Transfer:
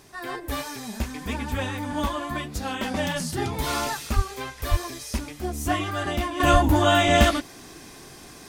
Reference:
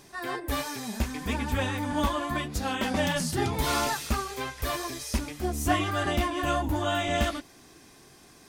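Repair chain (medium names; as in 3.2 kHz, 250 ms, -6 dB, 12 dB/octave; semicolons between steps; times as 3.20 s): 4.15–4.27 s: high-pass 140 Hz 24 dB/octave; 4.70–4.82 s: high-pass 140 Hz 24 dB/octave; 6.52–6.64 s: high-pass 140 Hz 24 dB/octave; expander -36 dBFS, range -21 dB; 6.40 s: gain correction -9 dB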